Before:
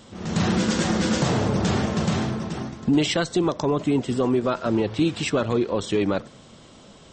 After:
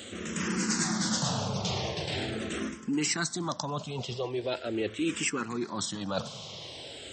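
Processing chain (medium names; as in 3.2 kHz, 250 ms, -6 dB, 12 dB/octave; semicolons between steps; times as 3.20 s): reverse; compression 6:1, threshold -32 dBFS, peak gain reduction 15 dB; reverse; high-pass 85 Hz; treble shelf 2 kHz +10.5 dB; barber-pole phaser -0.42 Hz; trim +4.5 dB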